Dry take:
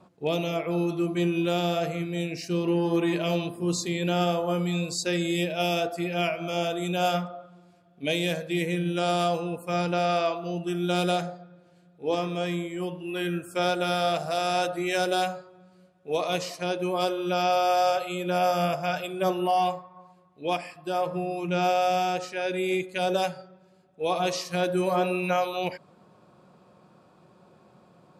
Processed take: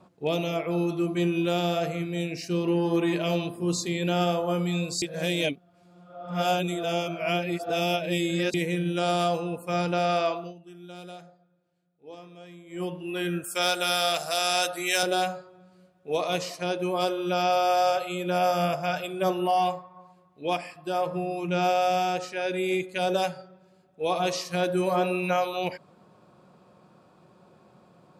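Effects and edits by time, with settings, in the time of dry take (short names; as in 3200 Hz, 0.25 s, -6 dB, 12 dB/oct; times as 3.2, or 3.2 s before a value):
5.02–8.54 reverse
10.39–12.81 dip -17.5 dB, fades 0.15 s
13.44–15.03 tilt +3.5 dB/oct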